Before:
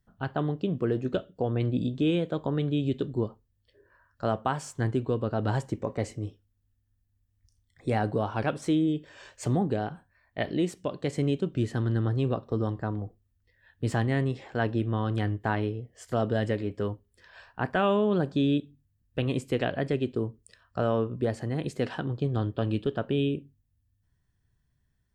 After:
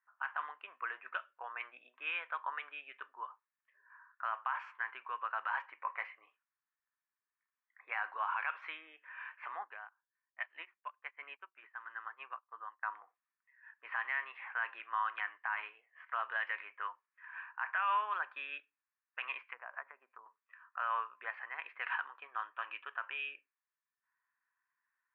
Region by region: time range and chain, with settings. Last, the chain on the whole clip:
9.64–12.83 s: hum notches 60/120/180/240/300/360 Hz + upward expansion 2.5:1, over -41 dBFS
19.43–20.26 s: low-pass that closes with the level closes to 590 Hz, closed at -24 dBFS + peaking EQ 340 Hz -10 dB 1.4 oct
whole clip: elliptic band-pass 1–2.5 kHz, stop band 80 dB; level-controlled noise filter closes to 1.6 kHz, open at -34.5 dBFS; peak limiter -31 dBFS; trim +6.5 dB

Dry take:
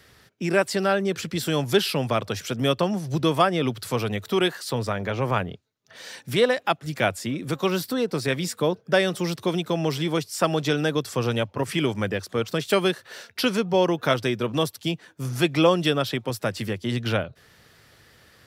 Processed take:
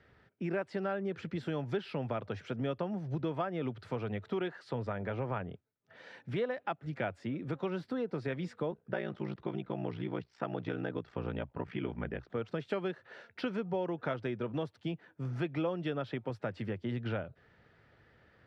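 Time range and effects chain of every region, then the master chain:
8.71–12.30 s: low-pass 4.1 kHz + peaking EQ 530 Hz -4 dB 0.29 oct + ring modulator 30 Hz
whole clip: low-pass 1.9 kHz 12 dB/octave; compression 3:1, threshold -25 dBFS; band-stop 1.1 kHz, Q 11; trim -7 dB

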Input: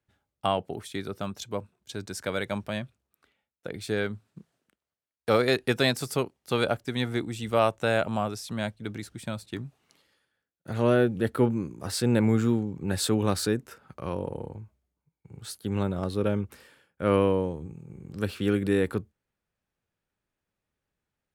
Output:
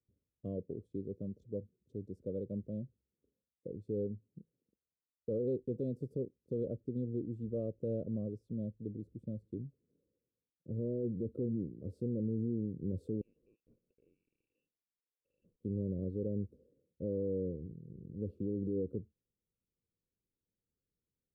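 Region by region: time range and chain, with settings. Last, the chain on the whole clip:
13.21–15.62 s: compression 4:1, threshold -39 dBFS + Butterworth band-stop 1.5 kHz, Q 4.5 + frequency inversion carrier 2.8 kHz
whole clip: elliptic low-pass 510 Hz, stop band 40 dB; peak limiter -22.5 dBFS; trim -5.5 dB

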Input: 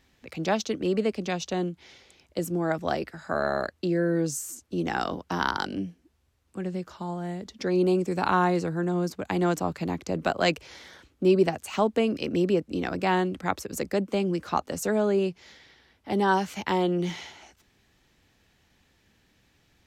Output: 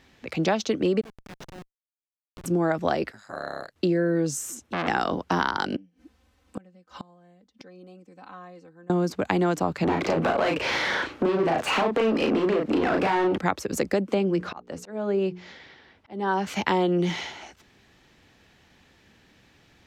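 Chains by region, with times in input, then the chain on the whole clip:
1.01–2.46 s: block-companded coder 5-bit + amplifier tone stack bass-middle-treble 5-5-5 + Schmitt trigger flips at -38.5 dBFS
3.12–3.76 s: pre-emphasis filter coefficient 0.8 + ring modulator 51 Hz
4.35–4.88 s: peaking EQ 220 Hz +5 dB 0.37 oct + band-stop 4.6 kHz, Q 7.9 + transformer saturation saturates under 1.8 kHz
5.76–8.90 s: comb 3.9 ms, depth 81% + inverted gate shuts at -29 dBFS, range -30 dB
9.84–13.38 s: compression 4:1, threshold -35 dBFS + overdrive pedal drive 28 dB, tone 1.6 kHz, clips at -20.5 dBFS + doubling 36 ms -3 dB
14.14–16.47 s: low-pass 3.5 kHz 6 dB/octave + hum notches 60/120/180/240/300/360/420/480 Hz + slow attack 665 ms
whole clip: bass shelf 84 Hz -8 dB; compression, threshold -28 dBFS; treble shelf 7.1 kHz -10.5 dB; trim +8.5 dB

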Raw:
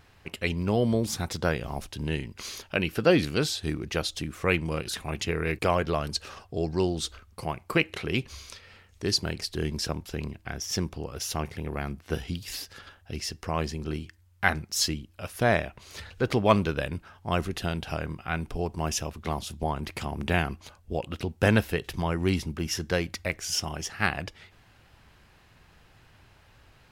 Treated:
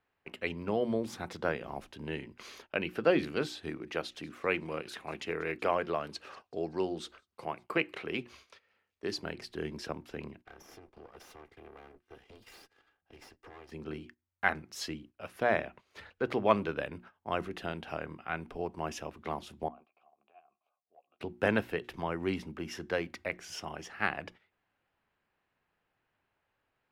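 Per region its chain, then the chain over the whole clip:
3.68–9.12 s: bass shelf 92 Hz -9.5 dB + feedback echo behind a high-pass 189 ms, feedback 47%, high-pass 3.4 kHz, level -18.5 dB
10.45–13.72 s: comb filter that takes the minimum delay 2.5 ms + compression 20:1, threshold -38 dBFS
19.68–21.20 s: vowel filter a + compression 12:1, threshold -43 dBFS + doubling 14 ms -11.5 dB
whole clip: hum notches 60/120/180/240/300/360 Hz; gate -44 dBFS, range -15 dB; three-band isolator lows -13 dB, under 200 Hz, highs -13 dB, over 3 kHz; trim -4 dB

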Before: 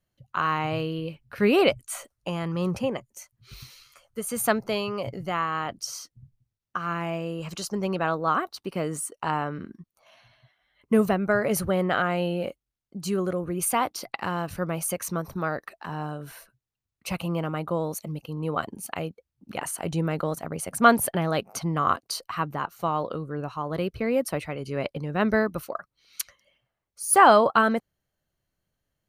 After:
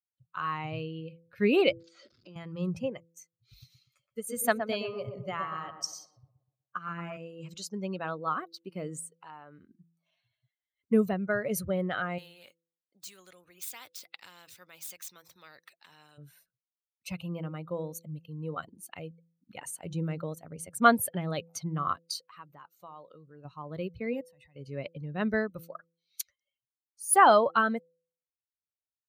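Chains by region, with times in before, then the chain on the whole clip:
1.80–2.36 s: jump at every zero crossing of -38 dBFS + compression 12:1, threshold -36 dBFS + cabinet simulation 140–5100 Hz, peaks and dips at 200 Hz +6 dB, 370 Hz +9 dB, 870 Hz -5 dB, 1.4 kHz +5 dB, 4.7 kHz +9 dB
3.59–7.17 s: transient shaper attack +3 dB, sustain -3 dB + tape echo 120 ms, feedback 66%, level -3.5 dB, low-pass 1.4 kHz
9.00–9.69 s: peaking EQ 160 Hz -7 dB 1.9 oct + compression 2:1, threshold -34 dBFS
12.18–16.18 s: median filter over 3 samples + high-pass 740 Hz 6 dB/octave + spectrum-flattening compressor 2:1
22.26–23.45 s: bass shelf 300 Hz -7 dB + compression 1.5:1, threshold -41 dBFS
24.13–24.56 s: level held to a coarse grid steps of 24 dB + comb 1.1 ms, depth 64%
whole clip: expander on every frequency bin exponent 1.5; high-pass 80 Hz; de-hum 167.2 Hz, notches 3; trim -2 dB

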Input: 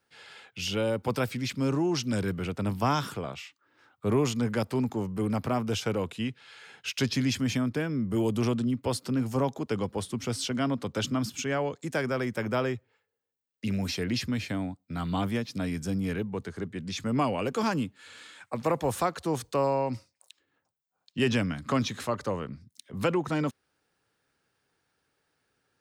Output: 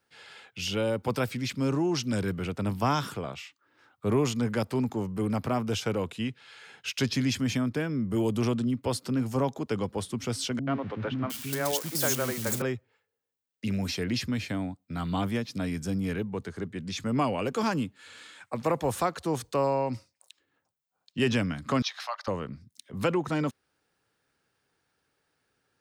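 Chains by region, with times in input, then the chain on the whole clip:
10.59–12.62 s: zero-crossing glitches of -22.5 dBFS + three bands offset in time lows, mids, highs 80/710 ms, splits 290/2500 Hz
21.82–22.28 s: elliptic high-pass 690 Hz, stop band 60 dB + resonant high shelf 6.3 kHz -6.5 dB, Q 3
whole clip: none

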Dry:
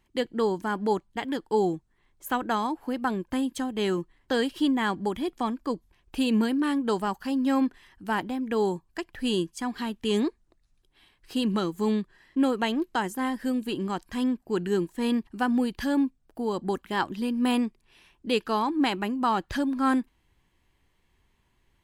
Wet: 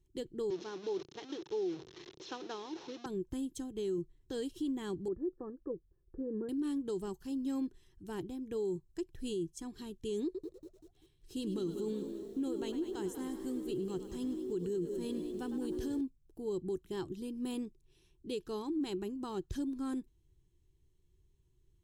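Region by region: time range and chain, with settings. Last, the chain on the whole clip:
0.50–3.06 s: one-bit delta coder 32 kbps, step -27 dBFS + transient shaper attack +6 dB, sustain +2 dB + band-pass 410–4200 Hz
5.08–6.49 s: rippled Chebyshev low-pass 1.8 kHz, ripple 6 dB + peaking EQ 520 Hz +8.5 dB 0.2 oct
10.24–16.01 s: frequency-shifting echo 104 ms, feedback 62%, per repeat +61 Hz, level -12 dB + bit-crushed delay 194 ms, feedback 55%, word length 8-bit, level -12.5 dB
whole clip: FFT filter 150 Hz 0 dB, 230 Hz -15 dB, 370 Hz 0 dB, 590 Hz -20 dB, 2.1 kHz -23 dB, 4.6 kHz -8 dB, 7 kHz -6 dB, 11 kHz -10 dB; peak limiter -29 dBFS; band-stop 4.7 kHz, Q 6.8

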